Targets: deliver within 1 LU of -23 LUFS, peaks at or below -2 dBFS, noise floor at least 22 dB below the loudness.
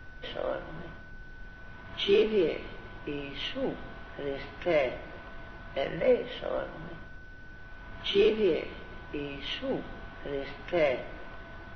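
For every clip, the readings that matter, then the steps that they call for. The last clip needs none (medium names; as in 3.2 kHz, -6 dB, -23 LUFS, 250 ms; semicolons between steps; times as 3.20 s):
steady tone 1.5 kHz; tone level -50 dBFS; noise floor -47 dBFS; noise floor target -53 dBFS; loudness -31.0 LUFS; peak level -14.5 dBFS; loudness target -23.0 LUFS
-> band-stop 1.5 kHz, Q 30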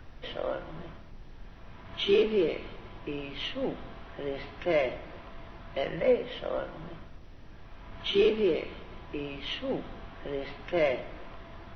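steady tone not found; noise floor -48 dBFS; noise floor target -53 dBFS
-> noise print and reduce 6 dB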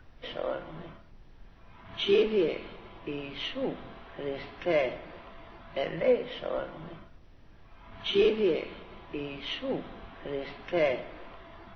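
noise floor -53 dBFS; loudness -31.0 LUFS; peak level -14.5 dBFS; loudness target -23.0 LUFS
-> trim +8 dB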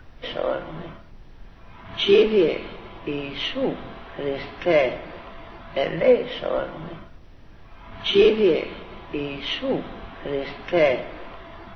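loudness -23.0 LUFS; peak level -6.5 dBFS; noise floor -45 dBFS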